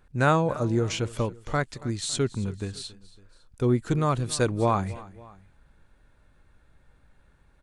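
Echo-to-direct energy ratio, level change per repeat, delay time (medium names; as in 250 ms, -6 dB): -18.5 dB, -5.5 dB, 278 ms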